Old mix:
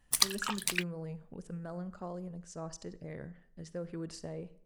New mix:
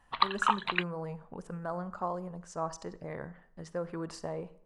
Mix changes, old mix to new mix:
background: add rippled Chebyshev low-pass 4.1 kHz, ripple 3 dB; master: add peaking EQ 1 kHz +14.5 dB 1.4 oct

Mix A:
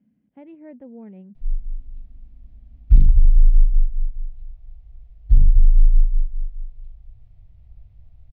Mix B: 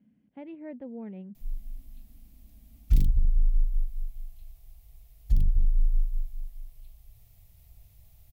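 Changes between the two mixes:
background: add tilt EQ +2 dB/octave; master: remove distance through air 260 m

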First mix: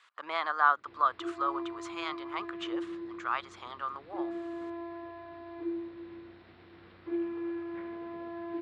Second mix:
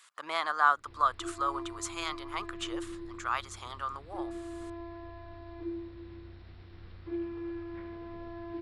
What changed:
background -3.5 dB; master: remove band-pass 220–3300 Hz

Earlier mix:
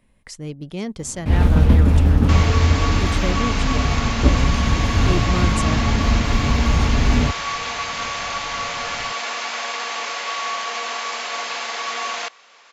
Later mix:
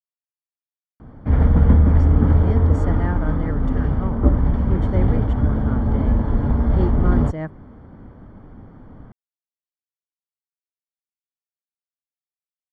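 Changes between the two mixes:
speech: entry +1.70 s; second sound: muted; master: add Savitzky-Golay filter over 41 samples

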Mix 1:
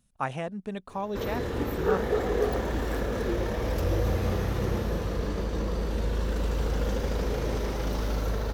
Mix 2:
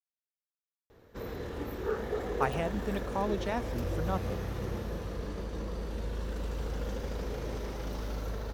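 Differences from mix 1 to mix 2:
speech: entry +2.20 s; background -7.5 dB

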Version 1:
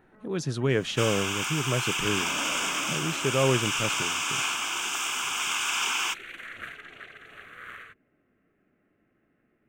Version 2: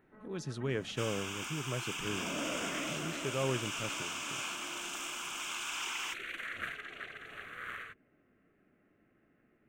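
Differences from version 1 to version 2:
speech -10.0 dB; second sound -11.0 dB

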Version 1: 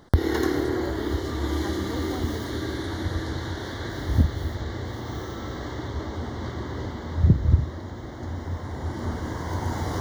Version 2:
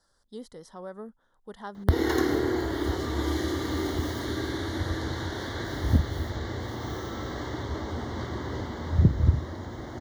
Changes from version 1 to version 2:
background: entry +1.75 s; master: add bass shelf 190 Hz -3 dB

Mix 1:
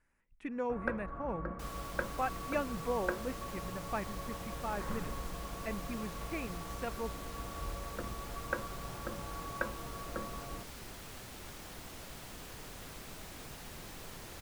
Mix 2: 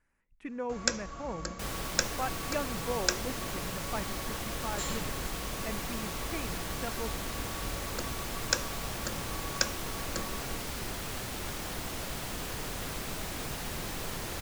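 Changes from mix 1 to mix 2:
first sound: remove low-pass 1.6 kHz 24 dB/octave; second sound +10.5 dB

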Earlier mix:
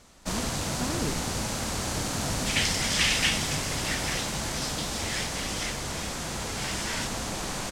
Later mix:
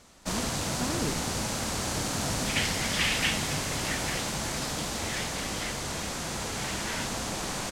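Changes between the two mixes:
second sound: add distance through air 160 m; master: add bass shelf 63 Hz -5.5 dB

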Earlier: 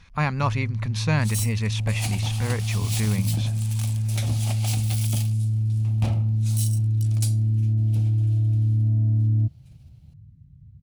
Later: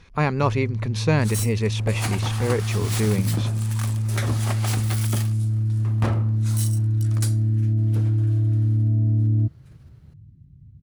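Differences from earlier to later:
second sound: add high-order bell 1.4 kHz +13 dB 1.2 oct; master: add peaking EQ 400 Hz +13 dB 0.96 oct

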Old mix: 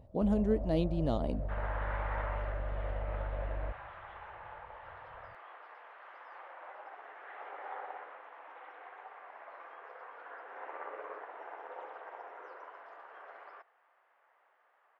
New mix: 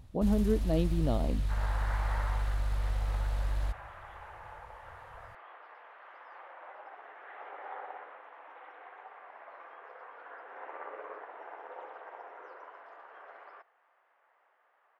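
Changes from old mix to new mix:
first sound: remove resonant low-pass 610 Hz, resonance Q 6; master: add bass shelf 100 Hz +8 dB

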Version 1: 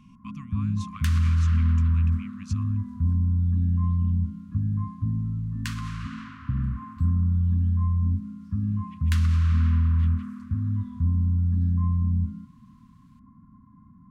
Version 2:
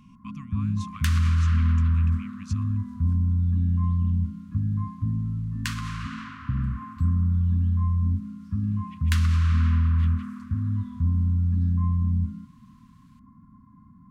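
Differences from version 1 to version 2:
first sound: remove distance through air 290 m; second sound +4.0 dB

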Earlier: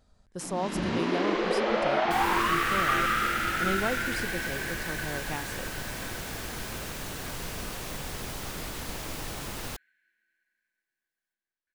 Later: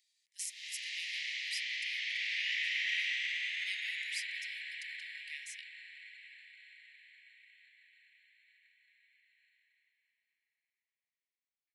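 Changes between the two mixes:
second sound: muted; master: add steep high-pass 1.9 kHz 96 dB/octave

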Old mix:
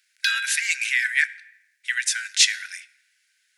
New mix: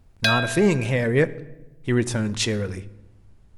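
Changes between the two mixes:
speech -10.0 dB; master: remove rippled Chebyshev high-pass 1.5 kHz, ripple 3 dB

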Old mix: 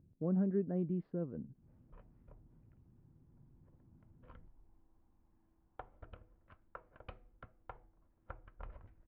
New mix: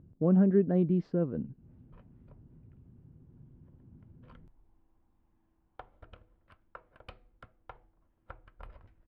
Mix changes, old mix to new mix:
speech +9.0 dB; master: remove distance through air 380 m

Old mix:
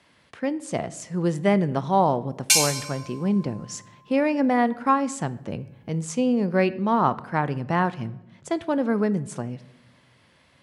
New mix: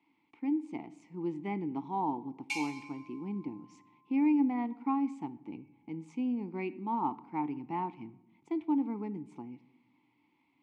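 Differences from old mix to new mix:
background: send +10.0 dB; master: add vowel filter u

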